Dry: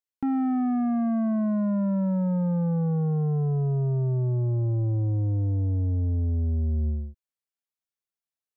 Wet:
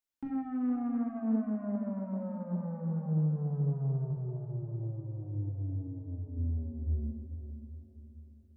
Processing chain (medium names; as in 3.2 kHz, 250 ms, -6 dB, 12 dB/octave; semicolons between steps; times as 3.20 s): peak limiter -34 dBFS, peak gain reduction 11 dB; 4.11–6.37 s: flange 1.5 Hz, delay 2.8 ms, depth 5.3 ms, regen +80%; echo that smears into a reverb 473 ms, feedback 47%, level -9 dB; simulated room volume 840 m³, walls furnished, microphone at 2.6 m; loudspeaker Doppler distortion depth 0.19 ms; trim -2.5 dB